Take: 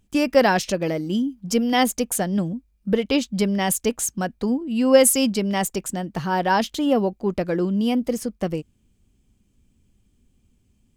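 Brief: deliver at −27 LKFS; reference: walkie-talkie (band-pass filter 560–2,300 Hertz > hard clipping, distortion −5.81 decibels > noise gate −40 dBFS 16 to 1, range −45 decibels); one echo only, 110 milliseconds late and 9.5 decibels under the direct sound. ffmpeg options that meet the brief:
ffmpeg -i in.wav -af "highpass=560,lowpass=2300,aecho=1:1:110:0.335,asoftclip=type=hard:threshold=-23.5dB,agate=range=-45dB:threshold=-40dB:ratio=16,volume=4dB" out.wav

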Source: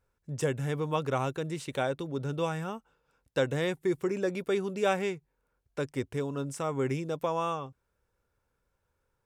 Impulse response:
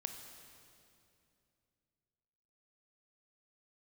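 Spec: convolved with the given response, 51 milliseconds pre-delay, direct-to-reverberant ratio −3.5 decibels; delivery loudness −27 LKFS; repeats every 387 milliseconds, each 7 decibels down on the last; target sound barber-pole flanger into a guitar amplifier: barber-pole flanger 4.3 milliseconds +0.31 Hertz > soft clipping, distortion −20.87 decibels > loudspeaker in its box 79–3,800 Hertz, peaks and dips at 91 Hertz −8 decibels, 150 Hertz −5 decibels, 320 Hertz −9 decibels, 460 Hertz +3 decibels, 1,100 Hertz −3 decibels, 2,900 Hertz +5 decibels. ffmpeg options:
-filter_complex "[0:a]aecho=1:1:387|774|1161|1548|1935:0.447|0.201|0.0905|0.0407|0.0183,asplit=2[link_01][link_02];[1:a]atrim=start_sample=2205,adelay=51[link_03];[link_02][link_03]afir=irnorm=-1:irlink=0,volume=5.5dB[link_04];[link_01][link_04]amix=inputs=2:normalize=0,asplit=2[link_05][link_06];[link_06]adelay=4.3,afreqshift=0.31[link_07];[link_05][link_07]amix=inputs=2:normalize=1,asoftclip=threshold=-16.5dB,highpass=79,equalizer=frequency=91:width_type=q:width=4:gain=-8,equalizer=frequency=150:width_type=q:width=4:gain=-5,equalizer=frequency=320:width_type=q:width=4:gain=-9,equalizer=frequency=460:width_type=q:width=4:gain=3,equalizer=frequency=1100:width_type=q:width=4:gain=-3,equalizer=frequency=2900:width_type=q:width=4:gain=5,lowpass=frequency=3800:width=0.5412,lowpass=frequency=3800:width=1.3066,volume=3.5dB"

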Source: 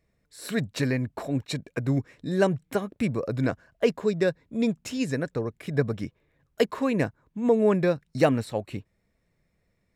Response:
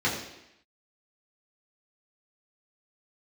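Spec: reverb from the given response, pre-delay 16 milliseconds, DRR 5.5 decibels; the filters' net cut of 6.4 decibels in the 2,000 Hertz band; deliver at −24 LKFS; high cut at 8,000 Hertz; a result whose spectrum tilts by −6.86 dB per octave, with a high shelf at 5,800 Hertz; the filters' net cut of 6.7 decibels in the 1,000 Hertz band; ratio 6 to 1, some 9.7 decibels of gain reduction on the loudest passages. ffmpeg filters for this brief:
-filter_complex "[0:a]lowpass=8000,equalizer=frequency=1000:width_type=o:gain=-8.5,equalizer=frequency=2000:width_type=o:gain=-6,highshelf=frequency=5800:gain=6.5,acompressor=threshold=-28dB:ratio=6,asplit=2[link_01][link_02];[1:a]atrim=start_sample=2205,adelay=16[link_03];[link_02][link_03]afir=irnorm=-1:irlink=0,volume=-18dB[link_04];[link_01][link_04]amix=inputs=2:normalize=0,volume=8.5dB"

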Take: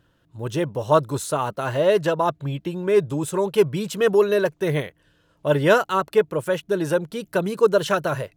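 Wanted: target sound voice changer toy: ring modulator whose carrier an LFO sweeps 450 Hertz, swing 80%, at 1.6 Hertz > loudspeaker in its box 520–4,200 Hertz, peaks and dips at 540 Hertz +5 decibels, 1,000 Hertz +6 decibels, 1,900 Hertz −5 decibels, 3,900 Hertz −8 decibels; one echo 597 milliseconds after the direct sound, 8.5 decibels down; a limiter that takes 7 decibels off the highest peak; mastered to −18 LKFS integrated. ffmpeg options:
ffmpeg -i in.wav -af "alimiter=limit=-12dB:level=0:latency=1,aecho=1:1:597:0.376,aeval=exprs='val(0)*sin(2*PI*450*n/s+450*0.8/1.6*sin(2*PI*1.6*n/s))':channel_layout=same,highpass=520,equalizer=frequency=540:width_type=q:width=4:gain=5,equalizer=frequency=1000:width_type=q:width=4:gain=6,equalizer=frequency=1900:width_type=q:width=4:gain=-5,equalizer=frequency=3900:width_type=q:width=4:gain=-8,lowpass=frequency=4200:width=0.5412,lowpass=frequency=4200:width=1.3066,volume=8dB" out.wav

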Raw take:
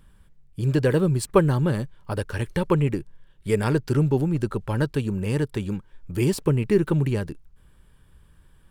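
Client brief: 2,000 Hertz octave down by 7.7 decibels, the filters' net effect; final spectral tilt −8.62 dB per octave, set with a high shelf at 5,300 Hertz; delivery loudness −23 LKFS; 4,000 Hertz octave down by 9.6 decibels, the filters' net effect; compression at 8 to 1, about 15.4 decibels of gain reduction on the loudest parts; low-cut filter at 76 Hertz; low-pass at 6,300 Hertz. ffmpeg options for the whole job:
ffmpeg -i in.wav -af "highpass=76,lowpass=6300,equalizer=frequency=2000:width_type=o:gain=-8.5,equalizer=frequency=4000:width_type=o:gain=-6.5,highshelf=frequency=5300:gain=-6,acompressor=threshold=-29dB:ratio=8,volume=11.5dB" out.wav

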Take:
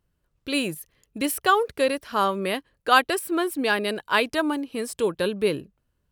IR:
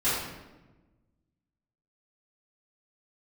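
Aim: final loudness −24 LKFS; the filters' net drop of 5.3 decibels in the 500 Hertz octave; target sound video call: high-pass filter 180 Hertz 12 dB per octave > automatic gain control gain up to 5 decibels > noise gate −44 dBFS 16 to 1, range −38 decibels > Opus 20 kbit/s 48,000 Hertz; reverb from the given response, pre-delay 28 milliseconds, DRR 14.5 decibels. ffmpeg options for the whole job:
-filter_complex "[0:a]equalizer=frequency=500:width_type=o:gain=-6.5,asplit=2[link_01][link_02];[1:a]atrim=start_sample=2205,adelay=28[link_03];[link_02][link_03]afir=irnorm=-1:irlink=0,volume=-26.5dB[link_04];[link_01][link_04]amix=inputs=2:normalize=0,highpass=180,dynaudnorm=maxgain=5dB,agate=range=-38dB:threshold=-44dB:ratio=16,volume=2.5dB" -ar 48000 -c:a libopus -b:a 20k

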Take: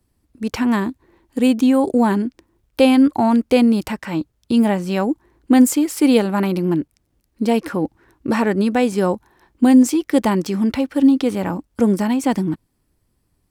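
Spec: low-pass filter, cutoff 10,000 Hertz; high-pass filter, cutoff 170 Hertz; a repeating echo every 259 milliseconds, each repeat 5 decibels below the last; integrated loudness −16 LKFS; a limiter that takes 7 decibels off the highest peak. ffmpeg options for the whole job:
ffmpeg -i in.wav -af "highpass=170,lowpass=10000,alimiter=limit=-9.5dB:level=0:latency=1,aecho=1:1:259|518|777|1036|1295|1554|1813:0.562|0.315|0.176|0.0988|0.0553|0.031|0.0173,volume=3dB" out.wav

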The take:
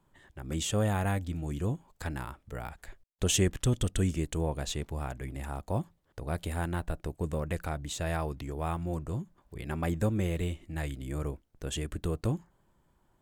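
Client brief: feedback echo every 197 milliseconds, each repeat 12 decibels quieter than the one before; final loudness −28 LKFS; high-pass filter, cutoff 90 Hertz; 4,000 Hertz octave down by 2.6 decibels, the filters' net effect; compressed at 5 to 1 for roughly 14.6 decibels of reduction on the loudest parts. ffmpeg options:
ffmpeg -i in.wav -af "highpass=90,equalizer=frequency=4000:width_type=o:gain=-3.5,acompressor=threshold=-40dB:ratio=5,aecho=1:1:197|394|591:0.251|0.0628|0.0157,volume=16.5dB" out.wav

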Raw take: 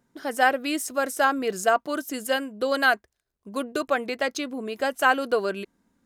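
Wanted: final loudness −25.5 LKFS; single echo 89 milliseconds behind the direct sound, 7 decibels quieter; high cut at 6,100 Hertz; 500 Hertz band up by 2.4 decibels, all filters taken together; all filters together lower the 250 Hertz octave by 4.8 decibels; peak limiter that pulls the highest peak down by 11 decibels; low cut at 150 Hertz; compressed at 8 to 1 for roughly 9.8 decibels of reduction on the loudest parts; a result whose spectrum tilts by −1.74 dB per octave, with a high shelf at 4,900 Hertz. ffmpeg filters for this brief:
ffmpeg -i in.wav -af "highpass=150,lowpass=6100,equalizer=frequency=250:width_type=o:gain=-6.5,equalizer=frequency=500:width_type=o:gain=4,highshelf=frequency=4900:gain=8,acompressor=threshold=-24dB:ratio=8,alimiter=level_in=1dB:limit=-24dB:level=0:latency=1,volume=-1dB,aecho=1:1:89:0.447,volume=9dB" out.wav

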